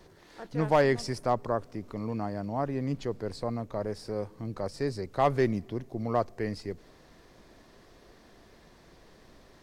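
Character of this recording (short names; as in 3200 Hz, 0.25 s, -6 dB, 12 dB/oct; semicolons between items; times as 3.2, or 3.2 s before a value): noise floor -57 dBFS; spectral tilt -6.0 dB/oct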